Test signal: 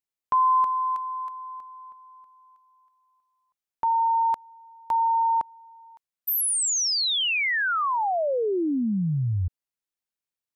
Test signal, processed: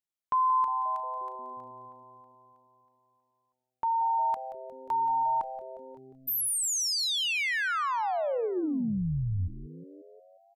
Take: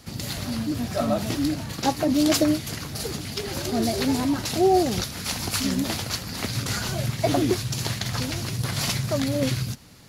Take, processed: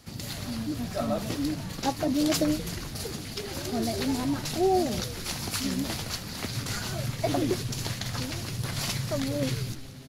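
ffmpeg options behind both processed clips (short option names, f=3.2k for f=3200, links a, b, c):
-filter_complex "[0:a]asplit=8[a][b][c][d][e][f][g][h];[b]adelay=178,afreqshift=-130,volume=-13.5dB[i];[c]adelay=356,afreqshift=-260,volume=-17.5dB[j];[d]adelay=534,afreqshift=-390,volume=-21.5dB[k];[e]adelay=712,afreqshift=-520,volume=-25.5dB[l];[f]adelay=890,afreqshift=-650,volume=-29.6dB[m];[g]adelay=1068,afreqshift=-780,volume=-33.6dB[n];[h]adelay=1246,afreqshift=-910,volume=-37.6dB[o];[a][i][j][k][l][m][n][o]amix=inputs=8:normalize=0,volume=-5dB"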